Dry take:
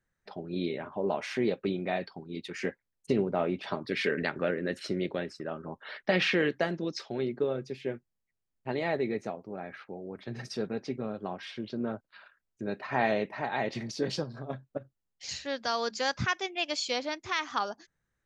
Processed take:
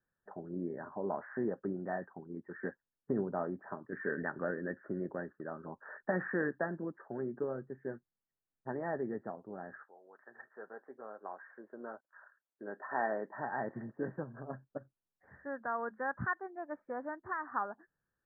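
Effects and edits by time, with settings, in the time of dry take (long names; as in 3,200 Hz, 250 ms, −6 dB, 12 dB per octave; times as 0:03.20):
0:03.27–0:03.92: fade out, to −6.5 dB
0:09.83–0:13.33: high-pass filter 1,100 Hz → 280 Hz
0:16.33–0:16.77: multiband upward and downward expander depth 40%
whole clip: dynamic equaliser 460 Hz, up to −4 dB, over −41 dBFS, Q 1.4; Chebyshev low-pass filter 1,800 Hz, order 8; low-shelf EQ 110 Hz −8.5 dB; level −3 dB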